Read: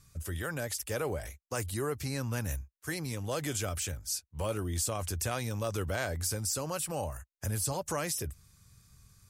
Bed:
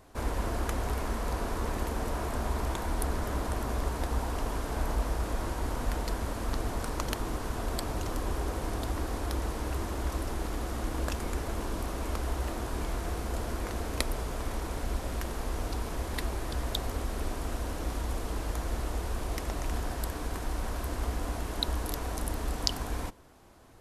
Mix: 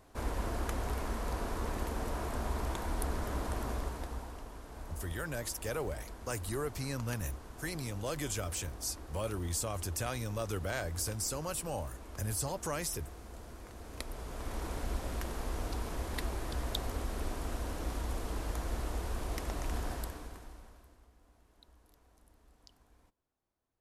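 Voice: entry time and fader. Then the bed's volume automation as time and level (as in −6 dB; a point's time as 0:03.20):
4.75 s, −3.0 dB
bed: 0:03.69 −4 dB
0:04.49 −15 dB
0:13.74 −15 dB
0:14.64 −3.5 dB
0:19.94 −3.5 dB
0:21.10 −31.5 dB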